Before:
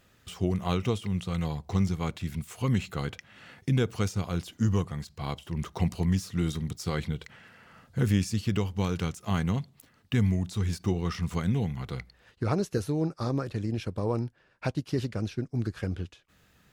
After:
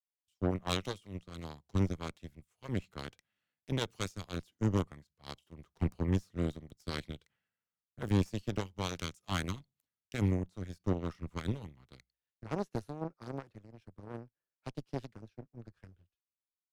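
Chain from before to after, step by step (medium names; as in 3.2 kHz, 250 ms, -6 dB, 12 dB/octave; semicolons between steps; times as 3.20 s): one-sided clip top -36.5 dBFS; Chebyshev shaper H 3 -19 dB, 4 -16 dB, 6 -23 dB, 7 -23 dB, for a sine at -15.5 dBFS; three bands expanded up and down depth 100%; trim -5.5 dB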